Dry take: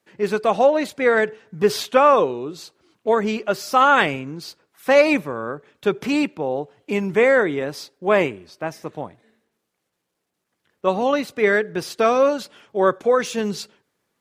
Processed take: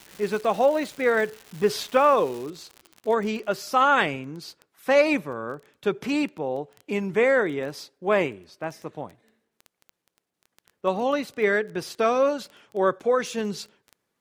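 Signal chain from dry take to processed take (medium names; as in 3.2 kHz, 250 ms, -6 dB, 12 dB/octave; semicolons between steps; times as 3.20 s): crackle 390 per s -28 dBFS, from 2.50 s 55 per s, from 3.64 s 10 per s; trim -4.5 dB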